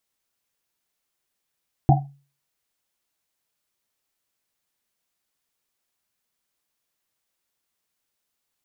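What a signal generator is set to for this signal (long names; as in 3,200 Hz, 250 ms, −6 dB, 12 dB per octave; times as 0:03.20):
drum after Risset, pitch 140 Hz, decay 0.38 s, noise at 750 Hz, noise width 120 Hz, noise 45%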